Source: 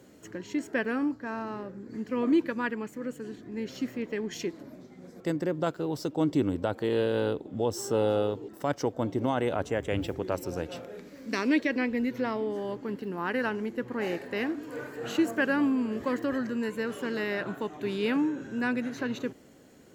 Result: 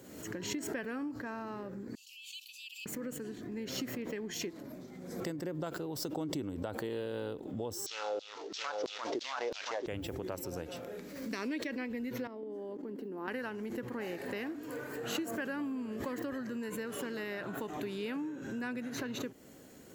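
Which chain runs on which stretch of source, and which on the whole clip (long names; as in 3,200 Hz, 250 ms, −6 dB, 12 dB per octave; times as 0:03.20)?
0:01.95–0:02.86: Chebyshev high-pass filter 2,600 Hz, order 8 + high-shelf EQ 9,800 Hz −3.5 dB
0:07.86–0:09.87: variable-slope delta modulation 32 kbit/s + single-tap delay 675 ms −6.5 dB + auto-filter high-pass saw down 3 Hz 330–4,500 Hz
0:12.27–0:13.28: high-pass filter 250 Hz 24 dB per octave + tilt shelving filter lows +9.5 dB, about 630 Hz + output level in coarse steps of 13 dB
whole clip: downward compressor 3 to 1, threshold −39 dBFS; high-shelf EQ 10,000 Hz +11.5 dB; background raised ahead of every attack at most 49 dB per second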